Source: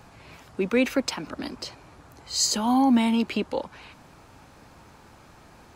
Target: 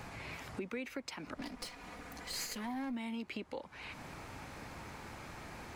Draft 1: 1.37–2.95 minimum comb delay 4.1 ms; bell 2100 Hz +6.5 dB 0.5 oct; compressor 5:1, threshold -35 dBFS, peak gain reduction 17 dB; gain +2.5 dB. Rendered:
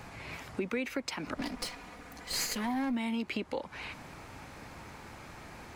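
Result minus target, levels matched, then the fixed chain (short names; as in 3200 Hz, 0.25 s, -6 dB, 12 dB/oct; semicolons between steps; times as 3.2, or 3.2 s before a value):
compressor: peak gain reduction -7 dB
1.37–2.95 minimum comb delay 4.1 ms; bell 2100 Hz +6.5 dB 0.5 oct; compressor 5:1, threshold -44 dBFS, peak gain reduction 24 dB; gain +2.5 dB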